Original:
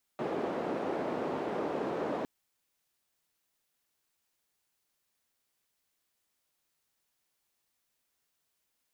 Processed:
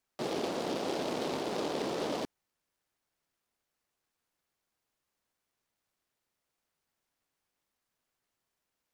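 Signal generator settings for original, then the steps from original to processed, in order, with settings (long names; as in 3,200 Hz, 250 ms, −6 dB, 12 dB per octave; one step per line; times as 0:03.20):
band-limited noise 330–440 Hz, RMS −34 dBFS 2.06 s
high-shelf EQ 4,900 Hz −7.5 dB
short delay modulated by noise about 3,200 Hz, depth 0.08 ms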